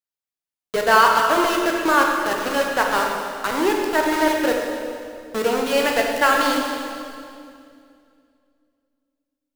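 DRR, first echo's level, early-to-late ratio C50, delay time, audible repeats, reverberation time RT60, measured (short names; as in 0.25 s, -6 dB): 0.0 dB, none, 1.5 dB, none, none, 2.4 s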